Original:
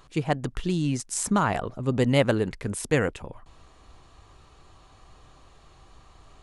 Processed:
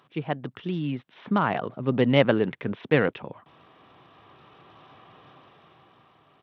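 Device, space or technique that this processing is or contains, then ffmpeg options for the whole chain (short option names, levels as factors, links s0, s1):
Bluetooth headset: -af "highpass=f=130:w=0.5412,highpass=f=130:w=1.3066,dynaudnorm=f=410:g=7:m=3.55,aresample=8000,aresample=44100,volume=0.668" -ar 32000 -c:a sbc -b:a 64k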